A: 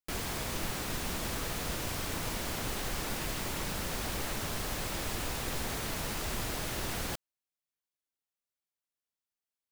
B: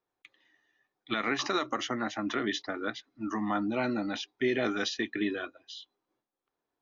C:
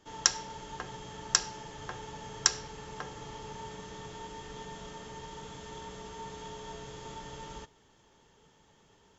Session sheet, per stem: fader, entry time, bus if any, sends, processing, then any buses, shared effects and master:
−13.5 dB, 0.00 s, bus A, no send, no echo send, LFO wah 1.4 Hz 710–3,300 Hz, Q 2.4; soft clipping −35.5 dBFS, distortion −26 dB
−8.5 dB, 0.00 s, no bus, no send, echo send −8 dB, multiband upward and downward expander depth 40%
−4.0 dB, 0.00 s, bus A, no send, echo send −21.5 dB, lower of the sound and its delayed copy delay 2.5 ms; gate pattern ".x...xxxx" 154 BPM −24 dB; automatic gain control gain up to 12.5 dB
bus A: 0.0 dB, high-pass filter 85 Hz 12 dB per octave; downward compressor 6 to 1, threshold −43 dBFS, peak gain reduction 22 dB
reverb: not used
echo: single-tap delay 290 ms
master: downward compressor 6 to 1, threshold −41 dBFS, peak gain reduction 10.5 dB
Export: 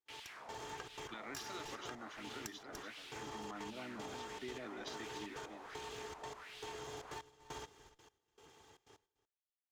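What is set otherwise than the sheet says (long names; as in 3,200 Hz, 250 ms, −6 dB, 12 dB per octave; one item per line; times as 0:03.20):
stem A −13.5 dB → −6.0 dB
stem B −8.5 dB → −18.0 dB
stem C −4.0 dB → −10.0 dB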